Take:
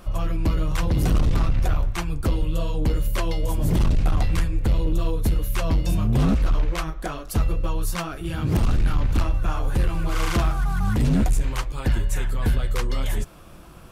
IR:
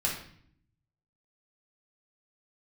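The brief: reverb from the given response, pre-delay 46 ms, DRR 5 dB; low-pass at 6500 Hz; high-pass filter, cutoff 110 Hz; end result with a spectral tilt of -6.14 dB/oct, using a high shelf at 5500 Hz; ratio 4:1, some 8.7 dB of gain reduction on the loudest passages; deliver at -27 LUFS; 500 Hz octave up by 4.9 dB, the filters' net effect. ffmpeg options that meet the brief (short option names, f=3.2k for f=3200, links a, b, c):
-filter_complex "[0:a]highpass=110,lowpass=6.5k,equalizer=f=500:t=o:g=6,highshelf=f=5.5k:g=-4.5,acompressor=threshold=-27dB:ratio=4,asplit=2[a][b];[1:a]atrim=start_sample=2205,adelay=46[c];[b][c]afir=irnorm=-1:irlink=0,volume=-12dB[d];[a][d]amix=inputs=2:normalize=0,volume=3.5dB"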